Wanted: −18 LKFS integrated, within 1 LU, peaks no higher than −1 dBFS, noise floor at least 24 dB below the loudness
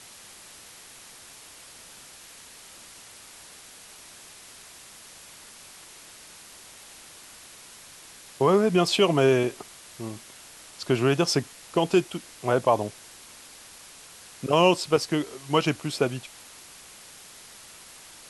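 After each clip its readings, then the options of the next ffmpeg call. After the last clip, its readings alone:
background noise floor −48 dBFS; target noise floor −49 dBFS; integrated loudness −24.5 LKFS; sample peak −8.0 dBFS; target loudness −18.0 LKFS
→ -af "afftdn=noise_reduction=6:noise_floor=-48"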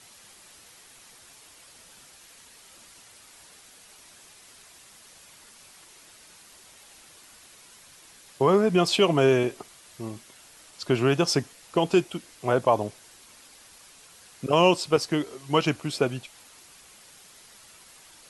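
background noise floor −52 dBFS; integrated loudness −24.0 LKFS; sample peak −8.0 dBFS; target loudness −18.0 LKFS
→ -af "volume=6dB"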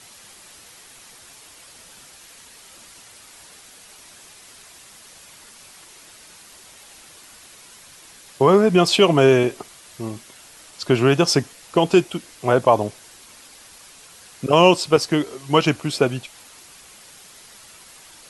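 integrated loudness −18.0 LKFS; sample peak −2.0 dBFS; background noise floor −46 dBFS

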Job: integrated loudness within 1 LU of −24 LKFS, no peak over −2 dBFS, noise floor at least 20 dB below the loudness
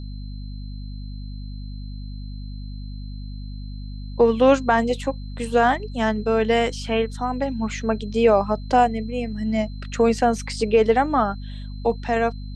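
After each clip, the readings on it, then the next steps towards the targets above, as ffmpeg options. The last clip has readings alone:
mains hum 50 Hz; hum harmonics up to 250 Hz; level of the hum −30 dBFS; interfering tone 4,100 Hz; level of the tone −50 dBFS; integrated loudness −21.5 LKFS; sample peak −4.5 dBFS; target loudness −24.0 LKFS
→ -af "bandreject=frequency=50:width_type=h:width=6,bandreject=frequency=100:width_type=h:width=6,bandreject=frequency=150:width_type=h:width=6,bandreject=frequency=200:width_type=h:width=6,bandreject=frequency=250:width_type=h:width=6"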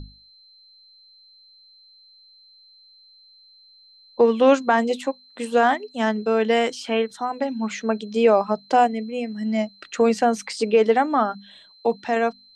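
mains hum none found; interfering tone 4,100 Hz; level of the tone −50 dBFS
→ -af "bandreject=frequency=4100:width=30"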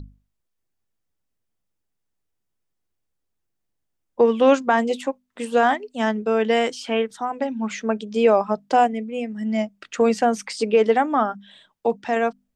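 interfering tone none found; integrated loudness −21.5 LKFS; sample peak −5.5 dBFS; target loudness −24.0 LKFS
→ -af "volume=-2.5dB"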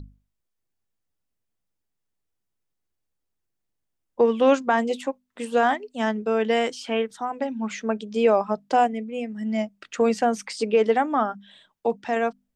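integrated loudness −24.0 LKFS; sample peak −8.0 dBFS; background noise floor −79 dBFS

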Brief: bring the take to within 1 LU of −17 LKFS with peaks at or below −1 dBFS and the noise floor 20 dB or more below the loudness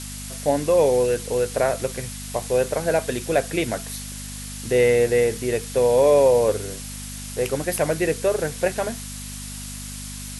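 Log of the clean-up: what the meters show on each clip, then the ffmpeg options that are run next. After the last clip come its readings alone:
mains hum 50 Hz; hum harmonics up to 250 Hz; level of the hum −34 dBFS; background noise floor −34 dBFS; target noise floor −42 dBFS; integrated loudness −21.5 LKFS; sample peak −7.5 dBFS; target loudness −17.0 LKFS
→ -af "bandreject=frequency=50:width_type=h:width=4,bandreject=frequency=100:width_type=h:width=4,bandreject=frequency=150:width_type=h:width=4,bandreject=frequency=200:width_type=h:width=4,bandreject=frequency=250:width_type=h:width=4"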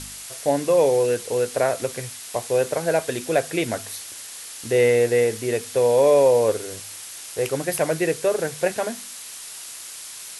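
mains hum none found; background noise floor −38 dBFS; target noise floor −42 dBFS
→ -af "afftdn=noise_reduction=6:noise_floor=-38"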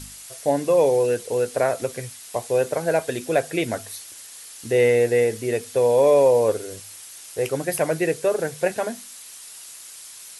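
background noise floor −42 dBFS; integrated loudness −21.5 LKFS; sample peak −8.0 dBFS; target loudness −17.0 LKFS
→ -af "volume=4.5dB"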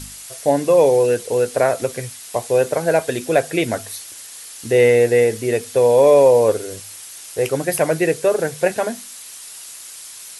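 integrated loudness −17.0 LKFS; sample peak −3.5 dBFS; background noise floor −37 dBFS

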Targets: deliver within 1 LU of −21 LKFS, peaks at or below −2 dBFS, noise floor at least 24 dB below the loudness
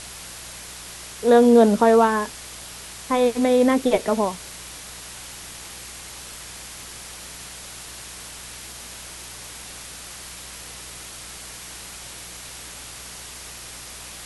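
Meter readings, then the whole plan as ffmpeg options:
mains hum 60 Hz; hum harmonics up to 180 Hz; level of the hum −48 dBFS; background noise floor −39 dBFS; target noise floor −43 dBFS; integrated loudness −18.5 LKFS; sample peak −3.5 dBFS; target loudness −21.0 LKFS
→ -af "bandreject=frequency=60:width_type=h:width=4,bandreject=frequency=120:width_type=h:width=4,bandreject=frequency=180:width_type=h:width=4"
-af "afftdn=noise_reduction=6:noise_floor=-39"
-af "volume=-2.5dB"

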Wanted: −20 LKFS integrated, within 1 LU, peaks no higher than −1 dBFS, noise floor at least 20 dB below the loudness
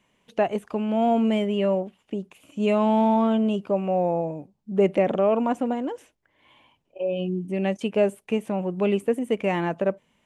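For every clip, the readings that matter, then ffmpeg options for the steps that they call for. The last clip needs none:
integrated loudness −24.5 LKFS; sample peak −9.0 dBFS; target loudness −20.0 LKFS
→ -af "volume=4.5dB"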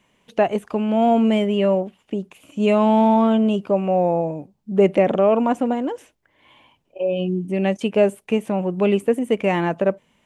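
integrated loudness −20.0 LKFS; sample peak −4.5 dBFS; background noise floor −65 dBFS

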